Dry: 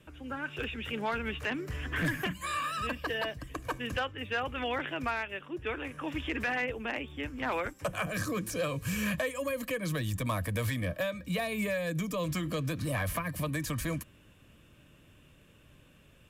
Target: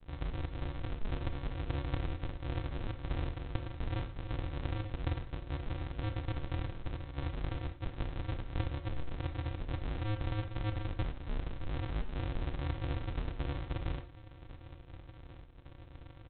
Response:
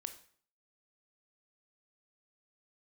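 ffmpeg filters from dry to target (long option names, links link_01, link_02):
-filter_complex "[0:a]acompressor=threshold=-42dB:ratio=5,aresample=8000,acrusher=samples=38:mix=1:aa=0.000001,aresample=44100[link_01];[1:a]atrim=start_sample=2205,afade=type=out:start_time=0.17:duration=0.01,atrim=end_sample=7938[link_02];[link_01][link_02]afir=irnorm=-1:irlink=0,volume=11.5dB"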